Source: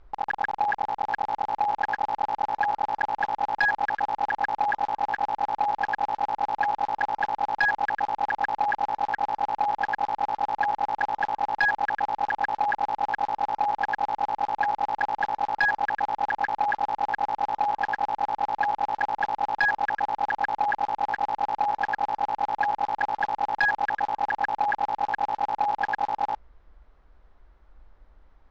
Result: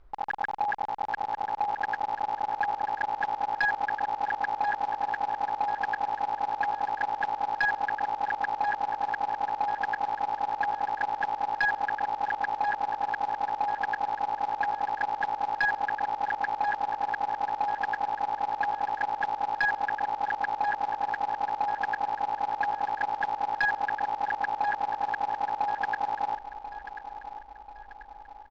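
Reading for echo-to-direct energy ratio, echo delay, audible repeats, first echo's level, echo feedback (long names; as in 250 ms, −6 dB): −11.0 dB, 1,038 ms, 4, −12.0 dB, 48%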